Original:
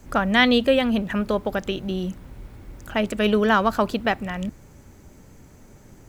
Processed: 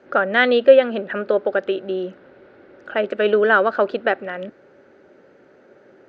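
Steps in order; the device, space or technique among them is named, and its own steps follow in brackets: phone earpiece (cabinet simulation 350–3600 Hz, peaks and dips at 380 Hz +8 dB, 550 Hz +9 dB, 1 kHz -7 dB, 1.5 kHz +8 dB, 2.3 kHz -4 dB, 3.3 kHz -4 dB); trim +1 dB

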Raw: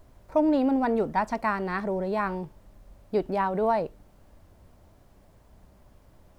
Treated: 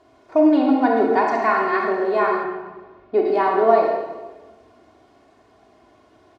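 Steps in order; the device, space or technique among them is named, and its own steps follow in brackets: supermarket ceiling speaker (band-pass 240–5000 Hz; reverberation RT60 1.3 s, pre-delay 27 ms, DRR -0.5 dB); 2.43–3.24 s: low-pass 3.9 kHz -> 2.4 kHz 12 dB/octave; comb 2.8 ms, depth 68%; trim +4 dB

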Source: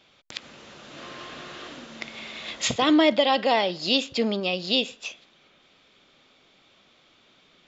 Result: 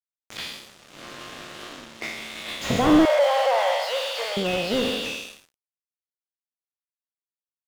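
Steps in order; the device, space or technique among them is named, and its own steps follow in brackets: spectral sustain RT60 1.23 s; early transistor amplifier (crossover distortion -40.5 dBFS; slew-rate limiter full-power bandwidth 77 Hz); 3.05–4.37 s: elliptic high-pass 530 Hz, stop band 40 dB; trim +3.5 dB

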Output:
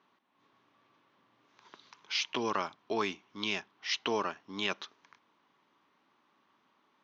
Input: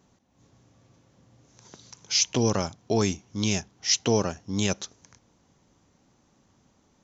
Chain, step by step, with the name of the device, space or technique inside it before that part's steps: phone earpiece (cabinet simulation 480–3600 Hz, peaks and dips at 510 Hz -10 dB, 730 Hz -7 dB, 1.1 kHz +5 dB)

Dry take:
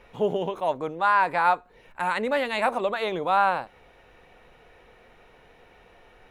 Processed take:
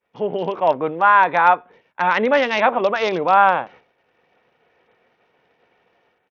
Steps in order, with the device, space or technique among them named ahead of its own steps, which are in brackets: high-pass 76 Hz 6 dB/octave; expander -43 dBFS; Bluetooth headset (high-pass 120 Hz 12 dB/octave; level rider gain up to 10.5 dB; resampled via 8 kHz; SBC 64 kbps 48 kHz)

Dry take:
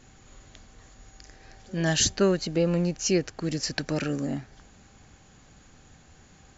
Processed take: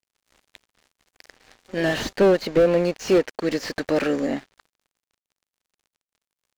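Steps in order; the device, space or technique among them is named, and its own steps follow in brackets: ten-band graphic EQ 125 Hz -11 dB, 250 Hz +5 dB, 500 Hz +11 dB, 1 kHz +4 dB, 2 kHz +11 dB, 4 kHz +7 dB; early transistor amplifier (crossover distortion -40 dBFS; slew-rate limiter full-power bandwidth 110 Hz)

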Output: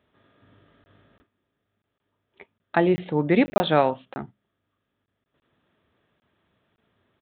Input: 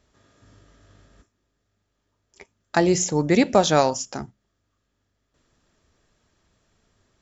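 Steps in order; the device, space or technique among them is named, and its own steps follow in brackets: call with lost packets (high-pass 110 Hz 12 dB/octave; resampled via 8 kHz; lost packets); trim -1 dB

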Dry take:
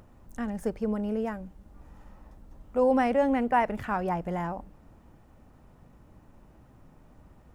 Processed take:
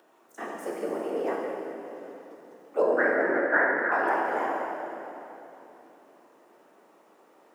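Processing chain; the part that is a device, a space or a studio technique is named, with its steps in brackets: 2.82–3.92 s: FFT filter 360 Hz 0 dB, 970 Hz -12 dB, 1.6 kHz +14 dB, 2.7 kHz -24 dB, 4.2 kHz -18 dB; whispering ghost (whisper effect; high-pass 370 Hz 24 dB/octave; reverberation RT60 3.2 s, pre-delay 8 ms, DRR -2.5 dB)

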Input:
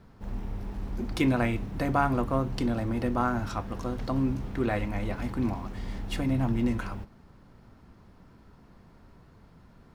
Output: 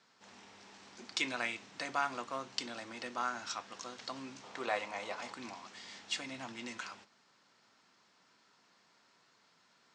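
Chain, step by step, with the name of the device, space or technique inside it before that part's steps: high-pass 140 Hz 12 dB/octave; piezo pickup straight into a mixer (low-pass 7.1 kHz 12 dB/octave; differentiator); 4.43–5.34 s: high-order bell 720 Hz +8 dB; steep low-pass 8 kHz 48 dB/octave; trim +9 dB

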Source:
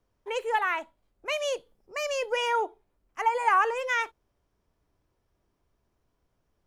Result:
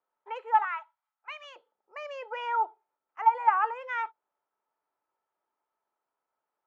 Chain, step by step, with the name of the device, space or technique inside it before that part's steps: 0.64–1.56 s: high-pass 880 Hz 24 dB/octave; tin-can telephone (band-pass 630–2100 Hz; small resonant body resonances 880/1300 Hz, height 13 dB, ringing for 55 ms); trim -5.5 dB

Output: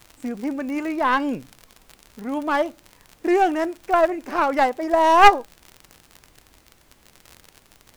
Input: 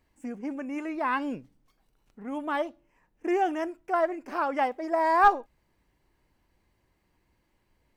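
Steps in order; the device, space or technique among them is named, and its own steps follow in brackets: record under a worn stylus (tracing distortion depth 0.14 ms; crackle 61 per s -36 dBFS; pink noise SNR 35 dB); trim +7.5 dB

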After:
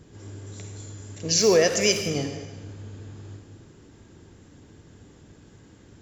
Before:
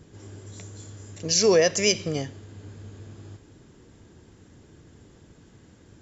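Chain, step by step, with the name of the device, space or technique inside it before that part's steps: saturated reverb return (on a send at -3.5 dB: reverberation RT60 1.1 s, pre-delay 43 ms + saturation -21.5 dBFS, distortion -10 dB)

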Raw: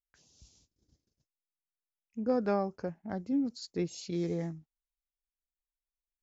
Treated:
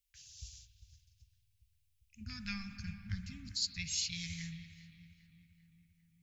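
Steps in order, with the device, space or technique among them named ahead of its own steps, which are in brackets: elliptic band-stop 100–2400 Hz, stop band 80 dB; dub delay into a spring reverb (filtered feedback delay 398 ms, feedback 65%, low-pass 2.4 kHz, level -14 dB; spring tank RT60 2.1 s, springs 54 ms, chirp 35 ms, DRR 8.5 dB); 2.21–3.52 s: bass shelf 360 Hz +7.5 dB; trim +11 dB

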